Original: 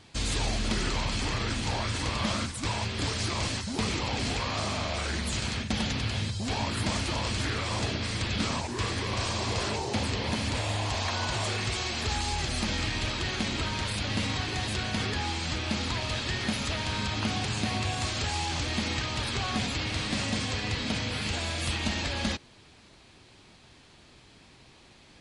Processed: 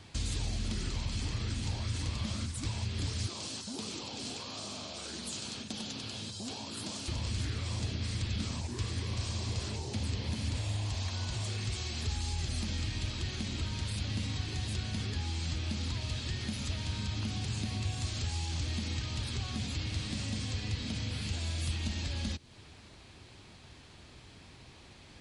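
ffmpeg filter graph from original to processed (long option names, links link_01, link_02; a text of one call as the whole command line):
ffmpeg -i in.wav -filter_complex "[0:a]asettb=1/sr,asplit=3[link_01][link_02][link_03];[link_01]atrim=end=3.274[link_04];[link_02]atrim=start=3.27:end=7.08,asetpts=PTS-STARTPTS,afade=type=in:duration=0.004:curve=qsin,afade=type=out:start_time=3.806:duration=0.004:curve=qsin,highpass=280,equalizer=frequency=2000:width=2.4:gain=-8.5[link_05];[link_03]atrim=start=7.076[link_06];[link_04][link_05]acrossfade=duration=0.004:curve1=hsin:curve2=qsin[link_07];[link_07][link_06]acrossfade=duration=0.004:curve1=qsin:curve2=hsin,acompressor=threshold=-38dB:ratio=2,equalizer=frequency=80:width=1.1:gain=6.5,acrossover=split=340|3000[link_08][link_09][link_10];[link_09]acompressor=threshold=-55dB:ratio=2[link_11];[link_08][link_11][link_10]amix=inputs=3:normalize=0" out.wav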